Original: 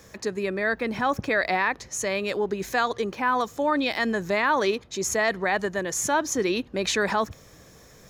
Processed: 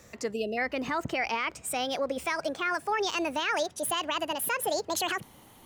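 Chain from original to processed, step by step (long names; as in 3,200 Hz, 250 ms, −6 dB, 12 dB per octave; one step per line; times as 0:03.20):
gliding playback speed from 106% → 180%
gain on a spectral selection 0:00.33–0:00.58, 830–2,500 Hz −30 dB
brickwall limiter −16 dBFS, peak gain reduction 4.5 dB
level −3.5 dB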